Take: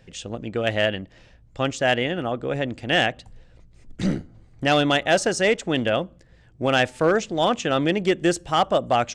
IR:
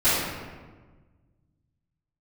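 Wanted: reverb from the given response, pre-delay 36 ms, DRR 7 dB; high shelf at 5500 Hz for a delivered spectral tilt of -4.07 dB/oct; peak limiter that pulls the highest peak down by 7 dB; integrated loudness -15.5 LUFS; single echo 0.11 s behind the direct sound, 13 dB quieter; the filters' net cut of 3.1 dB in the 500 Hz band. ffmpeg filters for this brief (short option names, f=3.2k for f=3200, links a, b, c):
-filter_complex "[0:a]equalizer=f=500:t=o:g=-4,highshelf=f=5.5k:g=5.5,alimiter=limit=-16dB:level=0:latency=1,aecho=1:1:110:0.224,asplit=2[a][b];[1:a]atrim=start_sample=2205,adelay=36[c];[b][c]afir=irnorm=-1:irlink=0,volume=-25dB[d];[a][d]amix=inputs=2:normalize=0,volume=11dB"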